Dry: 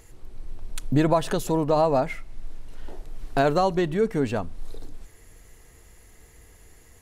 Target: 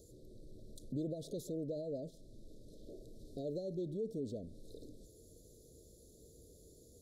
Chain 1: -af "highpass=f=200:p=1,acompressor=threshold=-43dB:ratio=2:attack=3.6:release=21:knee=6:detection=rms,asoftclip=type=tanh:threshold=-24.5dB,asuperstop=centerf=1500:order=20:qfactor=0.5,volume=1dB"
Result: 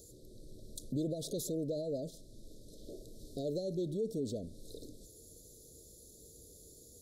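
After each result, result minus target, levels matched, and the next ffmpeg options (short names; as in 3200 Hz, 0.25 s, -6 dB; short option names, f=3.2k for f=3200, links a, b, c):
8000 Hz band +7.0 dB; compressor: peak gain reduction -4 dB
-af "highpass=f=200:p=1,acompressor=threshold=-43dB:ratio=2:attack=3.6:release=21:knee=6:detection=rms,asoftclip=type=tanh:threshold=-24.5dB,asuperstop=centerf=1500:order=20:qfactor=0.5,highshelf=f=3k:g=-9.5,volume=1dB"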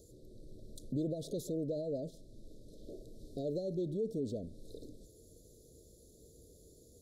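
compressor: peak gain reduction -4 dB
-af "highpass=f=200:p=1,acompressor=threshold=-51dB:ratio=2:attack=3.6:release=21:knee=6:detection=rms,asoftclip=type=tanh:threshold=-24.5dB,asuperstop=centerf=1500:order=20:qfactor=0.5,highshelf=f=3k:g=-9.5,volume=1dB"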